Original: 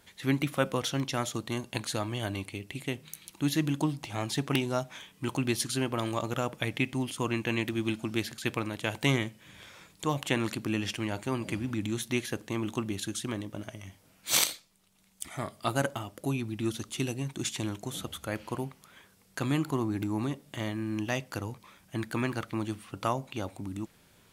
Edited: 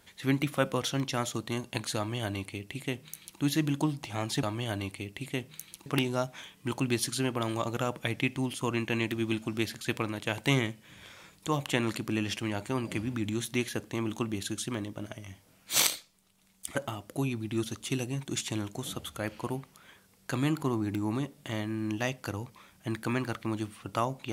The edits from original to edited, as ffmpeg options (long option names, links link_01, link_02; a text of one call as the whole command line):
ffmpeg -i in.wav -filter_complex "[0:a]asplit=4[link_01][link_02][link_03][link_04];[link_01]atrim=end=4.432[link_05];[link_02]atrim=start=1.968:end=3.402[link_06];[link_03]atrim=start=4.428:end=15.322[link_07];[link_04]atrim=start=15.828[link_08];[link_05][link_06]acrossfade=duration=0.004:curve1=hsin:curve2=hsin[link_09];[link_09][link_07]acrossfade=duration=0.004:curve1=hsin:curve2=hsin[link_10];[link_10][link_08]acrossfade=duration=0.004:curve1=hsin:curve2=hsin" out.wav